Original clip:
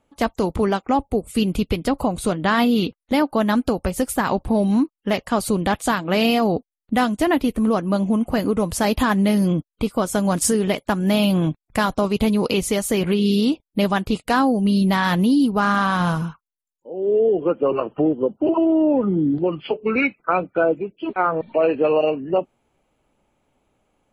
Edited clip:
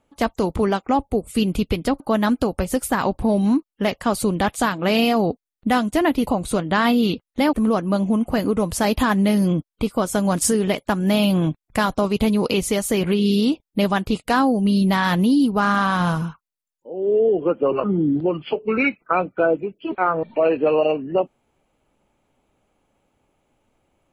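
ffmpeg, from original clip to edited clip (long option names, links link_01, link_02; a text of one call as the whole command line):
ffmpeg -i in.wav -filter_complex "[0:a]asplit=5[link_01][link_02][link_03][link_04][link_05];[link_01]atrim=end=2.002[link_06];[link_02]atrim=start=3.258:end=7.532[link_07];[link_03]atrim=start=1.998:end=3.262[link_08];[link_04]atrim=start=7.528:end=17.842[link_09];[link_05]atrim=start=19.018[link_10];[link_06][link_07]acrossfade=duration=0.004:curve1=hsin:curve2=hsin[link_11];[link_11][link_08]acrossfade=duration=0.004:curve1=hsin:curve2=hsin[link_12];[link_12][link_09]acrossfade=duration=0.004:curve1=hsin:curve2=hsin[link_13];[link_13][link_10]acrossfade=duration=0.004:curve1=hsin:curve2=hsin" out.wav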